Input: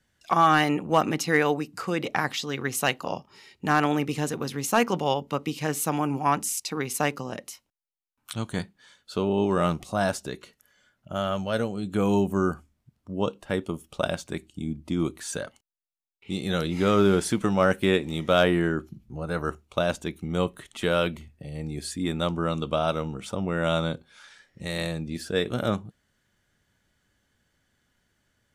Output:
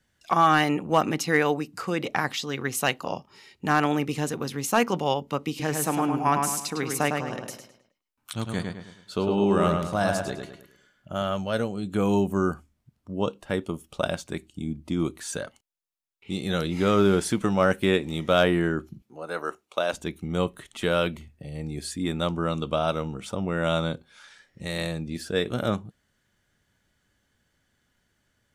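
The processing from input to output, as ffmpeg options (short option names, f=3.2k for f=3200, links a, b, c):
-filter_complex "[0:a]asettb=1/sr,asplit=3[a][b][c];[a]atrim=end=5.494[d];[b]atrim=start=5.49:end=11.23,asetpts=PTS-STARTPTS,afade=t=in:d=0.004:c=qsin,afade=t=out:st=5.736:d=0.004:c=qsin,asplit=2[e][f];[f]adelay=105,lowpass=f=3.9k:p=1,volume=-4dB,asplit=2[g][h];[h]adelay=105,lowpass=f=3.9k:p=1,volume=0.42,asplit=2[i][j];[j]adelay=105,lowpass=f=3.9k:p=1,volume=0.42,asplit=2[k][l];[l]adelay=105,lowpass=f=3.9k:p=1,volume=0.42,asplit=2[m][n];[n]adelay=105,lowpass=f=3.9k:p=1,volume=0.42[o];[e][g][i][k][m][o]amix=inputs=6:normalize=0,atrim=end_sample=253134[p];[c]atrim=start=11.226[q];[d][p]acrossfade=d=0.004:c1=hsin:c2=qsin[r];[r][q]acrossfade=d=0.004:c1=qsin:c2=hsin,asettb=1/sr,asplit=3[s][t][u];[s]atrim=end=19.024[v];[t]atrim=start=19.02:end=19.93,asetpts=PTS-STARTPTS,afade=t=in:d=0.004:c=qsin,afade=t=out:st=0.906:d=0.004:c=qsin,highpass=380[w];[u]atrim=start=19.926[x];[v][w]acrossfade=d=0.004:c1=hsin:c2=qsin[y];[y][x]acrossfade=d=0.004:c1=qsin:c2=hsin"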